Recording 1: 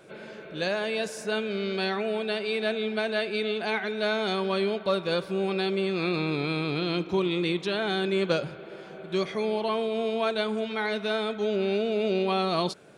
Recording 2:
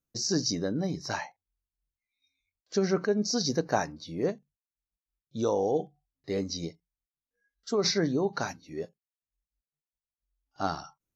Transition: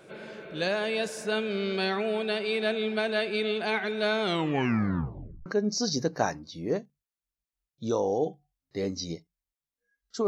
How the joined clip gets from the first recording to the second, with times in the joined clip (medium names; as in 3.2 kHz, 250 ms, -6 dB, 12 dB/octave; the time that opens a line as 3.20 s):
recording 1
4.22 s: tape stop 1.24 s
5.46 s: go over to recording 2 from 2.99 s